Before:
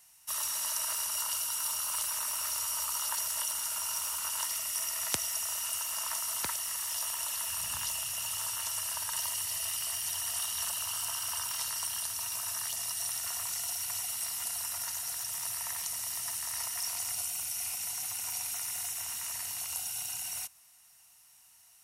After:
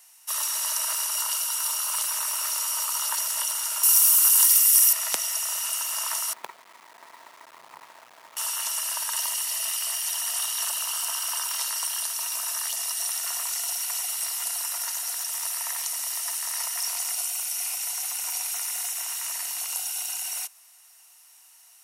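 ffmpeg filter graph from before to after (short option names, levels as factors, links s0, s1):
-filter_complex "[0:a]asettb=1/sr,asplit=3[s0][s1][s2];[s0]atrim=end=3.834[s3];[s1]atrim=start=3.83:end=4.93,asetpts=PTS-STARTPTS,afade=t=in:d=0.004:c=qsin,afade=t=out:st=1.096:d=0.004:c=qsin,highpass=820,aemphasis=mode=production:type=50fm[s4];[s2]atrim=start=4.926[s5];[s3][s4]acrossfade=d=0.004:c1=hsin:c2=qsin[s6];[s6][s5]acrossfade=d=0.004:c1=qsin:c2=hsin,asettb=1/sr,asplit=3[s7][s8][s9];[s7]atrim=end=6.334[s10];[s8]atrim=start=6.33:end=8.37,asetpts=PTS-STARTPTS,afade=t=in:d=0.004:c=qsin,afade=t=out:st=2.036:d=0.004:c=qsin,lowpass=f=1100:w=0.5412,lowpass=f=1100:w=1.3066,acrusher=bits=6:dc=4:mix=0:aa=0.000001[s11];[s9]atrim=start=8.366[s12];[s10][s11]acrossfade=d=0.004:c1=hsin:c2=qsin[s13];[s13][s12]acrossfade=d=0.004:c1=qsin:c2=hsin,highpass=460,acontrast=52"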